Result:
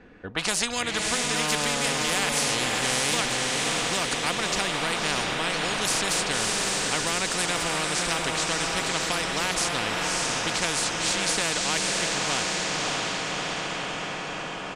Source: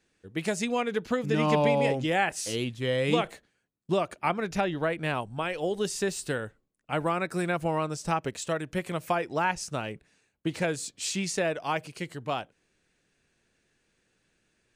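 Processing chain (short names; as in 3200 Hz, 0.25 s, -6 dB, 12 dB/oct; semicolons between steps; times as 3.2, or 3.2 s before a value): low-pass opened by the level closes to 1600 Hz, open at -22 dBFS; comb 4.1 ms, depth 37%; on a send: diffused feedback echo 0.598 s, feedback 51%, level -4.5 dB; on the sum: spectral compressor 4:1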